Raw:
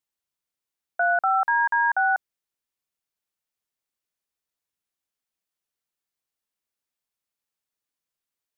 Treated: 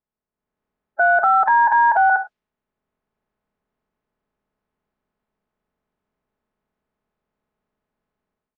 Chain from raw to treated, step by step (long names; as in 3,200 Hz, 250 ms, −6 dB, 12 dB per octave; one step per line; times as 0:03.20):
spectral magnitudes quantised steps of 30 dB
0:01.47–0:02.10: flat-topped bell 710 Hz +10 dB 1 octave
low-pass that shuts in the quiet parts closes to 1,300 Hz, open at −15 dBFS
comb filter 4.7 ms, depth 45%
convolution reverb, pre-delay 26 ms, DRR 14 dB
transient designer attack −7 dB, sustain −1 dB
low-shelf EQ 460 Hz +7.5 dB
automatic gain control gain up to 12 dB
boost into a limiter +10 dB
level −7.5 dB